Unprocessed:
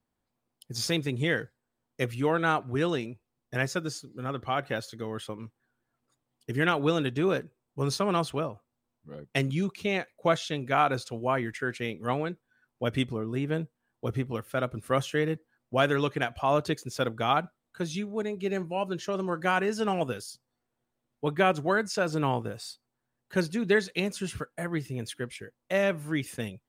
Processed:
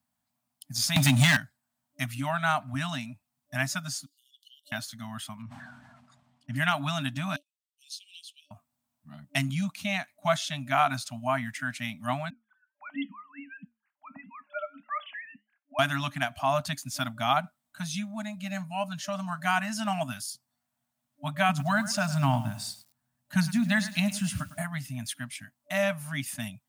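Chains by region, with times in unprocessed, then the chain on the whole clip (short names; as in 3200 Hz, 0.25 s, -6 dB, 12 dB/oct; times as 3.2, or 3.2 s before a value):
0.96–1.37 sample leveller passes 3 + three-band squash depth 100%
4.06–4.72 compressor 8:1, threshold -39 dBFS + brick-wall FIR high-pass 2800 Hz
5.42–6.56 tape spacing loss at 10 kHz 23 dB + sustainer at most 30 dB/s
7.36–8.51 steep high-pass 2800 Hz 72 dB/oct + tilt -4.5 dB/oct
12.3–15.79 sine-wave speech + flange 1.5 Hz, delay 5.9 ms, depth 2 ms, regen -84%
21.49–24.62 low shelf 230 Hz +9.5 dB + lo-fi delay 0.105 s, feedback 35%, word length 8-bit, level -14.5 dB
whole clip: HPF 93 Hz; FFT band-reject 290–590 Hz; high shelf 5900 Hz +9.5 dB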